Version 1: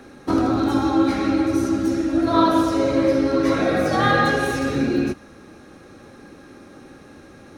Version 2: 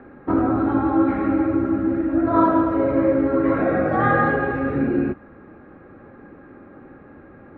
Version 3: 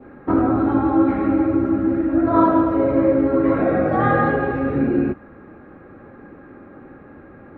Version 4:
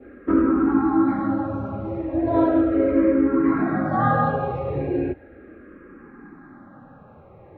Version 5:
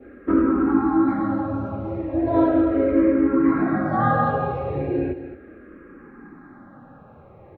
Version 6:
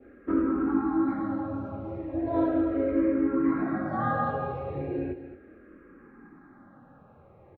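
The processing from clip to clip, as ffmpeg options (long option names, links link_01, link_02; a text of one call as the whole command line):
ffmpeg -i in.wav -af "lowpass=frequency=1900:width=0.5412,lowpass=frequency=1900:width=1.3066" out.wav
ffmpeg -i in.wav -af "adynamicequalizer=threshold=0.0178:dfrequency=1600:dqfactor=1.4:tfrequency=1600:tqfactor=1.4:attack=5:release=100:ratio=0.375:range=2:mode=cutabove:tftype=bell,volume=2dB" out.wav
ffmpeg -i in.wav -filter_complex "[0:a]asplit=2[link_01][link_02];[link_02]afreqshift=-0.37[link_03];[link_01][link_03]amix=inputs=2:normalize=1" out.wav
ffmpeg -i in.wav -af "aecho=1:1:222:0.251" out.wav
ffmpeg -i in.wav -filter_complex "[0:a]asplit=2[link_01][link_02];[link_02]adelay=22,volume=-13dB[link_03];[link_01][link_03]amix=inputs=2:normalize=0,volume=-8dB" out.wav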